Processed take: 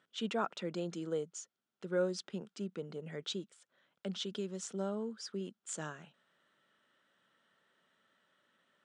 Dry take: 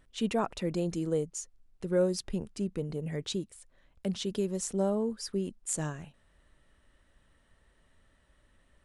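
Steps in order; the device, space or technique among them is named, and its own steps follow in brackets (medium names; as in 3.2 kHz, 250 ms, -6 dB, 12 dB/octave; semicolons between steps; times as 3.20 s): 4.24–5.41 s: dynamic bell 660 Hz, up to -4 dB, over -38 dBFS, Q 0.77; television speaker (cabinet simulation 180–7500 Hz, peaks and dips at 280 Hz -5 dB, 1.4 kHz +9 dB, 3.3 kHz +7 dB); trim -5.5 dB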